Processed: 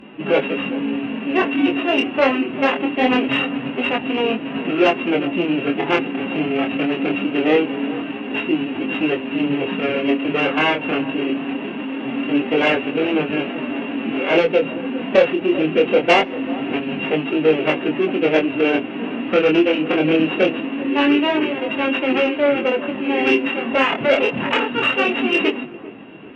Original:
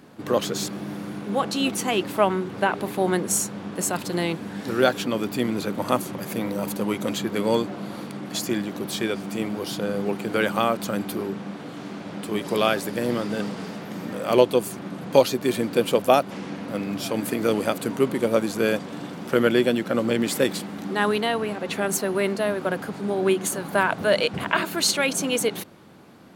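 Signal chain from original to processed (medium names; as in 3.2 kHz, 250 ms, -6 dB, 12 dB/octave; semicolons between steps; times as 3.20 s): sorted samples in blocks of 16 samples; steep low-pass 3.2 kHz 72 dB/octave; hum notches 60/120/180 Hz; dynamic bell 540 Hz, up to +3 dB, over -29 dBFS, Q 1.2; in parallel at +0.5 dB: compression 10:1, threshold -30 dBFS, peak gain reduction 22 dB; on the sum: formant-preserving pitch shift +5.5 st; saturation -9.5 dBFS, distortion -19 dB; Chebyshev shaper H 3 -32 dB, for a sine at -9.5 dBFS; chorus 0.23 Hz, delay 19 ms, depth 7.3 ms; feedback echo behind a low-pass 395 ms, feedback 32%, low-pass 1.3 kHz, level -16 dB; on a send at -17.5 dB: reverberation RT60 0.65 s, pre-delay 3 ms; on the sum: trim +7 dB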